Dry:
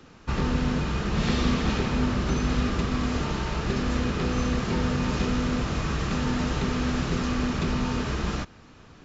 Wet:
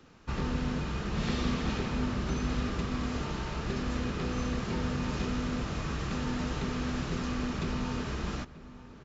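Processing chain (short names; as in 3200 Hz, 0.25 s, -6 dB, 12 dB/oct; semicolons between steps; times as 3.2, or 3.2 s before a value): outdoor echo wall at 160 m, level -16 dB; gain -6.5 dB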